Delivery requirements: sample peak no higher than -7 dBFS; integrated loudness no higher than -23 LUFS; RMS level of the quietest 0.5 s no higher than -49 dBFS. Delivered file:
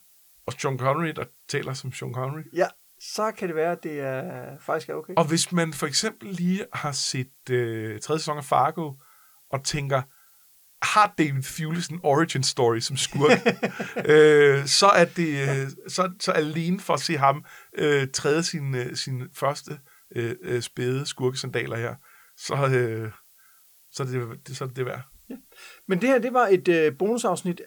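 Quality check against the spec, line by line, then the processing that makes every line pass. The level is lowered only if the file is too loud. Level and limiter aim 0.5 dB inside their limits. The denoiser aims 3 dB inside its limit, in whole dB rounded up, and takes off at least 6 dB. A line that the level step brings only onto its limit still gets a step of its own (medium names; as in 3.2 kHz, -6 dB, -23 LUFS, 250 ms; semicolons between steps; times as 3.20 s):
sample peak -5.5 dBFS: fail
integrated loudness -24.0 LUFS: pass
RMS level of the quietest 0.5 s -57 dBFS: pass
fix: peak limiter -7.5 dBFS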